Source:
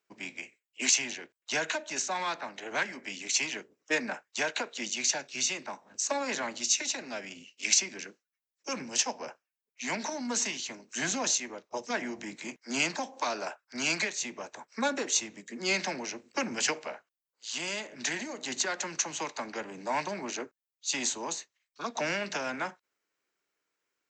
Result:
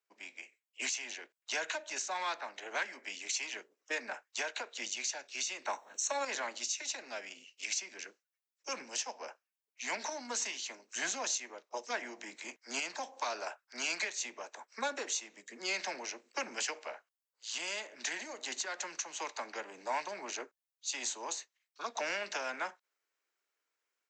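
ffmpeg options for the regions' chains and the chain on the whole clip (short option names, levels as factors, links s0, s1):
-filter_complex "[0:a]asettb=1/sr,asplit=3[s0][s1][s2];[s0]atrim=end=5.654[s3];[s1]atrim=start=5.65:end=6.25,asetpts=PTS-STARTPTS,afade=t=in:d=0.004:c=qsin,afade=t=out:st=0.596:d=0.004:c=qsin,bass=f=250:g=-5,treble=f=4000:g=3,acontrast=82,asuperstop=centerf=4900:order=20:qfactor=6.6[s4];[s2]atrim=start=6.246[s5];[s3][s4]acrossfade=d=0.004:c1=hsin:c2=qsin[s6];[s6][s5]acrossfade=d=0.004:c1=qsin:c2=hsin,highpass=460,alimiter=limit=0.0891:level=0:latency=1:release=256,dynaudnorm=f=370:g=3:m=1.78,volume=0.398"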